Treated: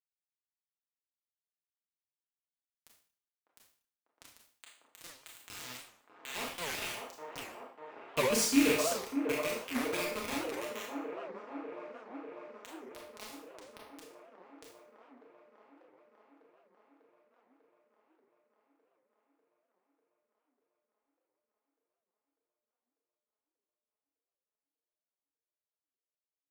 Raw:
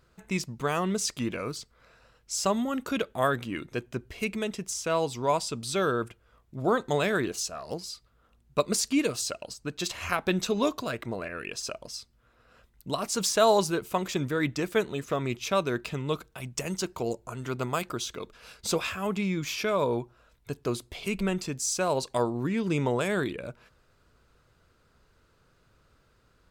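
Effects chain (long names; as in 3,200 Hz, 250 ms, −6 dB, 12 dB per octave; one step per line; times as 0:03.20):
loose part that buzzes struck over −38 dBFS, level −14 dBFS
source passing by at 0:08.51, 16 m/s, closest 7.3 metres
high-pass filter 78 Hz 12 dB per octave
in parallel at 0 dB: downward compressor 20 to 1, threshold −49 dBFS, peak gain reduction 30 dB
on the sum: bit reduction 5 bits
notch comb filter 190 Hz
on a send: delay with a band-pass on its return 596 ms, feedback 73%, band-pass 620 Hz, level −3.5 dB
on the sum: four-comb reverb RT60 0.49 s, combs from 25 ms, DRR −1.5 dB
wow of a warped record 78 rpm, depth 250 cents
level −5 dB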